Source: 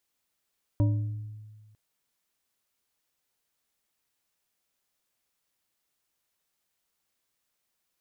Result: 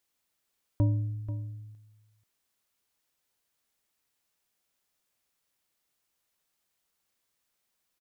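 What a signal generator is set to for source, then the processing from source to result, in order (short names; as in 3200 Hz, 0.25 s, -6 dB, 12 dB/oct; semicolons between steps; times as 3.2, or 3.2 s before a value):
glass hit bar, length 0.95 s, lowest mode 107 Hz, modes 4, decay 1.56 s, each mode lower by 7.5 dB, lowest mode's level -19 dB
echo 0.486 s -13 dB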